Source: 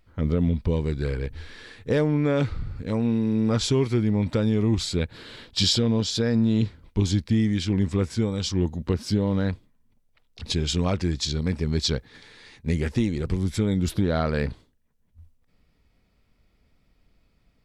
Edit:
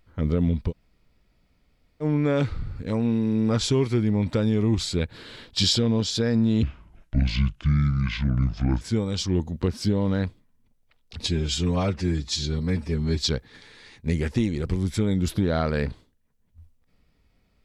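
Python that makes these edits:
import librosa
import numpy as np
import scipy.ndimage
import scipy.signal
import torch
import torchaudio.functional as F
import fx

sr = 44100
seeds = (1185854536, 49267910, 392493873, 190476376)

y = fx.edit(x, sr, fx.room_tone_fill(start_s=0.7, length_s=1.33, crossfade_s=0.06),
    fx.speed_span(start_s=6.63, length_s=1.44, speed=0.66),
    fx.stretch_span(start_s=10.52, length_s=1.31, factor=1.5), tone=tone)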